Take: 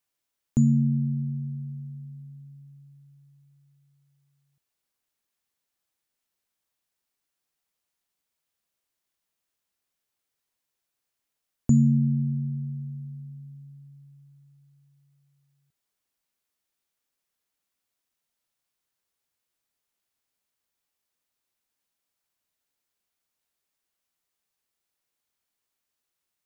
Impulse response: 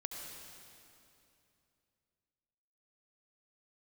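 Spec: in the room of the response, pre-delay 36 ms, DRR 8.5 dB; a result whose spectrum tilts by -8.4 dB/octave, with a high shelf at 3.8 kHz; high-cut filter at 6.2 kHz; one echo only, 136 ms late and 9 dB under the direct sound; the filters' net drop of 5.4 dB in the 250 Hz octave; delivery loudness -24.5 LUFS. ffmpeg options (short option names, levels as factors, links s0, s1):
-filter_complex "[0:a]lowpass=6200,equalizer=f=250:t=o:g=-7,highshelf=f=3800:g=-8,aecho=1:1:136:0.355,asplit=2[s0][s1];[1:a]atrim=start_sample=2205,adelay=36[s2];[s1][s2]afir=irnorm=-1:irlink=0,volume=0.422[s3];[s0][s3]amix=inputs=2:normalize=0,volume=1.12"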